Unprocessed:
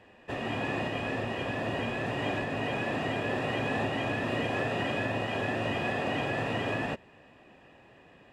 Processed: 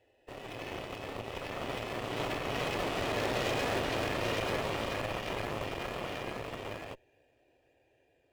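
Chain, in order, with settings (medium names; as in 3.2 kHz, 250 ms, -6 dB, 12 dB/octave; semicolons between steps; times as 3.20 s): Doppler pass-by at 3.51 s, 11 m/s, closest 14 m; static phaser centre 480 Hz, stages 4; in parallel at -9.5 dB: decimation with a swept rate 9×, swing 100% 1.1 Hz; on the sum: Chebyshev shaper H 8 -12 dB, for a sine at -19 dBFS; trim -2 dB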